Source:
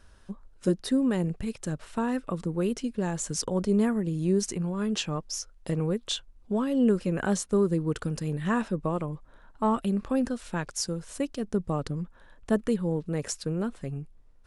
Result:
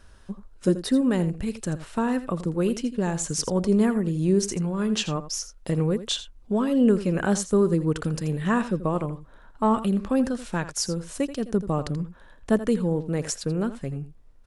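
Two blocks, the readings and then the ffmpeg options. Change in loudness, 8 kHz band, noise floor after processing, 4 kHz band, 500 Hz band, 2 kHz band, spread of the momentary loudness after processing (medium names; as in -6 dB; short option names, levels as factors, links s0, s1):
+3.5 dB, +3.5 dB, -51 dBFS, +3.5 dB, +3.5 dB, +3.5 dB, 10 LU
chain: -af "aecho=1:1:83:0.211,volume=1.5"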